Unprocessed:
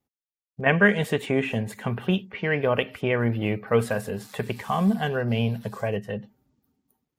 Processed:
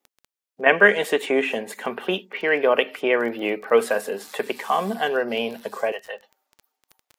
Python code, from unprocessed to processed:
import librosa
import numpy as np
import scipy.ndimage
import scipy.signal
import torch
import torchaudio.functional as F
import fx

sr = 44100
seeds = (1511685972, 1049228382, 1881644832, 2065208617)

y = fx.highpass(x, sr, hz=fx.steps((0.0, 300.0), (5.92, 620.0)), slope=24)
y = fx.dmg_crackle(y, sr, seeds[0], per_s=13.0, level_db=-37.0)
y = y * librosa.db_to_amplitude(5.0)